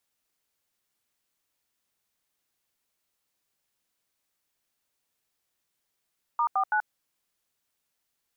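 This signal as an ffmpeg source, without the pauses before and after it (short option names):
-f lavfi -i "aevalsrc='0.0596*clip(min(mod(t,0.165),0.082-mod(t,0.165))/0.002,0,1)*(eq(floor(t/0.165),0)*(sin(2*PI*941*mod(t,0.165))+sin(2*PI*1209*mod(t,0.165)))+eq(floor(t/0.165),1)*(sin(2*PI*770*mod(t,0.165))+sin(2*PI*1209*mod(t,0.165)))+eq(floor(t/0.165),2)*(sin(2*PI*852*mod(t,0.165))+sin(2*PI*1477*mod(t,0.165))))':d=0.495:s=44100"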